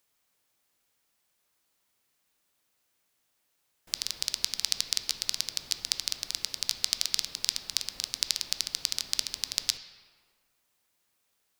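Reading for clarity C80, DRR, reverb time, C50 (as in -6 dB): 11.5 dB, 8.5 dB, 1.8 s, 10.0 dB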